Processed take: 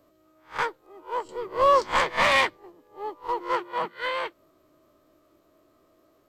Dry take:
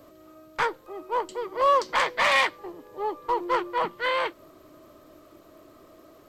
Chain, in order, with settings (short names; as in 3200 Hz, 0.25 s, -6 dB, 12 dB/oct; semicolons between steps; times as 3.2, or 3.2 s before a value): spectral swells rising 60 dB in 0.34 s; 1.25–2.57 low shelf 300 Hz +12 dB; 3.51–4.02 HPF 57 Hz; upward expander 1.5:1, over -40 dBFS